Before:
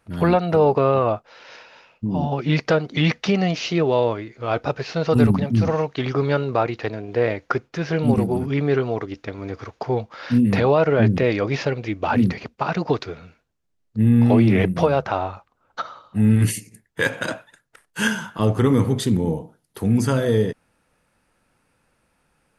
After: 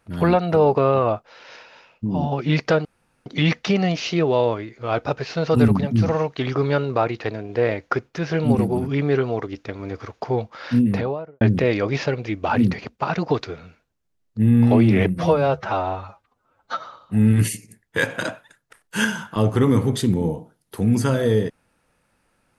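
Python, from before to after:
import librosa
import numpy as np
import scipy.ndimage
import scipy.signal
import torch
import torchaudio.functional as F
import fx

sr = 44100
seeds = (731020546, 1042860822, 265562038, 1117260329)

y = fx.studio_fade_out(x, sr, start_s=10.29, length_s=0.71)
y = fx.edit(y, sr, fx.insert_room_tone(at_s=2.85, length_s=0.41),
    fx.stretch_span(start_s=14.74, length_s=1.12, factor=1.5), tone=tone)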